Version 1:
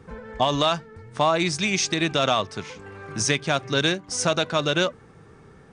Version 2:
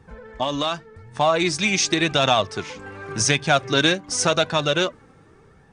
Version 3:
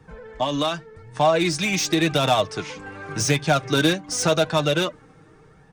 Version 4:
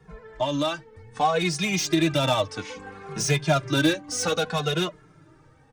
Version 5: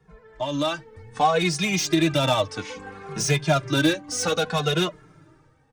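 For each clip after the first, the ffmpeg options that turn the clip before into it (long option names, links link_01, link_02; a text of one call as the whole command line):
ffmpeg -i in.wav -af "dynaudnorm=framelen=360:gausssize=7:maxgain=11.5dB,flanger=delay=1.1:depth=2.7:regen=47:speed=0.88:shape=sinusoidal,volume=1dB" out.wav
ffmpeg -i in.wav -filter_complex "[0:a]aecho=1:1:6.5:0.4,acrossover=split=190|840[link_01][link_02][link_03];[link_03]asoftclip=type=tanh:threshold=-19.5dB[link_04];[link_01][link_02][link_04]amix=inputs=3:normalize=0" out.wav
ffmpeg -i in.wav -filter_complex "[0:a]asplit=2[link_01][link_02];[link_02]adelay=2.4,afreqshift=-0.63[link_03];[link_01][link_03]amix=inputs=2:normalize=1" out.wav
ffmpeg -i in.wav -af "dynaudnorm=framelen=120:gausssize=9:maxgain=9.5dB,volume=-6dB" out.wav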